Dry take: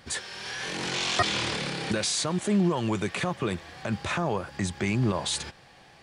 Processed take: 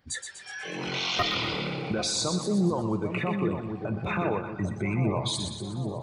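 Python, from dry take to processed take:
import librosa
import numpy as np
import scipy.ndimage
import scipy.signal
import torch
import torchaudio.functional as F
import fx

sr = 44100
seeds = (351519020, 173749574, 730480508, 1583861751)

p1 = fx.envelope_sharpen(x, sr, power=1.5)
p2 = 10.0 ** (-16.0 / 20.0) * (np.abs((p1 / 10.0 ** (-16.0 / 20.0) + 3.0) % 4.0 - 2.0) - 1.0)
p3 = fx.room_shoebox(p2, sr, seeds[0], volume_m3=760.0, walls='mixed', distance_m=0.45)
p4 = fx.noise_reduce_blind(p3, sr, reduce_db=14)
p5 = p4 + fx.echo_split(p4, sr, split_hz=950.0, low_ms=796, high_ms=122, feedback_pct=52, wet_db=-6.5, dry=0)
y = F.gain(torch.from_numpy(p5), -1.5).numpy()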